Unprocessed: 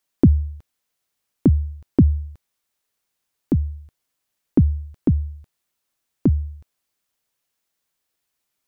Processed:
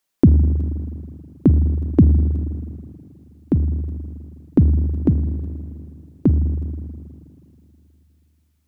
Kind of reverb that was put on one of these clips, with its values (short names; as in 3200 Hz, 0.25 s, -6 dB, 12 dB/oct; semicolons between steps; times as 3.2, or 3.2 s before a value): spring tank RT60 2.8 s, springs 40/53 ms, chirp 75 ms, DRR 8 dB; gain +1.5 dB